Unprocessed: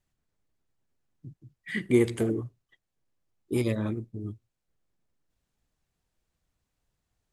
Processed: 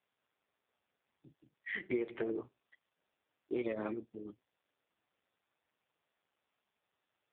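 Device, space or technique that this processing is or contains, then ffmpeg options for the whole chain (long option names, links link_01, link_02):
voicemail: -af "highpass=440,lowpass=3100,acompressor=threshold=-33dB:ratio=10,volume=2.5dB" -ar 8000 -c:a libopencore_amrnb -b:a 5150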